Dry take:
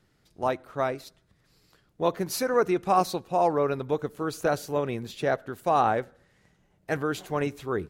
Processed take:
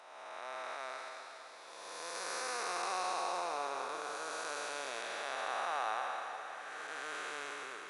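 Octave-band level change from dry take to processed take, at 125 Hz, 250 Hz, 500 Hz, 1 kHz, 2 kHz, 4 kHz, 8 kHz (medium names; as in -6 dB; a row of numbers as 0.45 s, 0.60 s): under -35 dB, -25.0 dB, -17.0 dB, -10.0 dB, -4.0 dB, -2.5 dB, -3.0 dB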